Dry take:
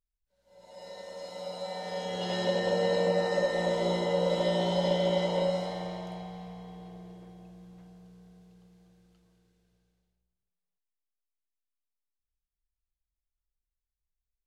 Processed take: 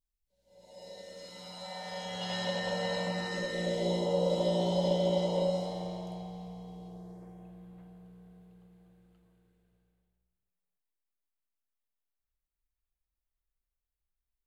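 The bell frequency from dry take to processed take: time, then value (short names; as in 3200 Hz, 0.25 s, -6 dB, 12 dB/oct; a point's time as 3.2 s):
bell -14.5 dB 1.1 oct
0.91 s 1300 Hz
1.76 s 370 Hz
2.97 s 370 Hz
4.09 s 1700 Hz
6.85 s 1700 Hz
7.51 s 5600 Hz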